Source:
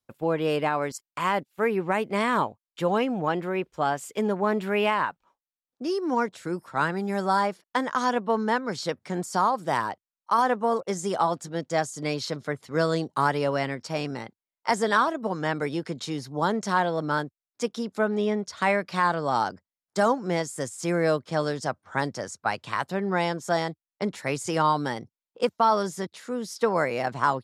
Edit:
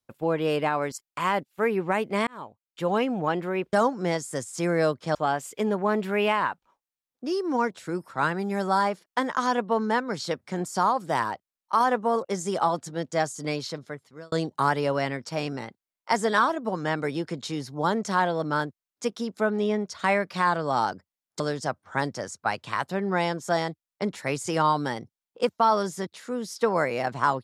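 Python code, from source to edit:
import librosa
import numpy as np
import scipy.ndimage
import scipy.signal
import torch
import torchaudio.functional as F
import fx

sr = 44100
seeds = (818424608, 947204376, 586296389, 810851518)

y = fx.edit(x, sr, fx.fade_in_span(start_s=2.27, length_s=0.71),
    fx.fade_out_span(start_s=12.03, length_s=0.87),
    fx.move(start_s=19.98, length_s=1.42, to_s=3.73), tone=tone)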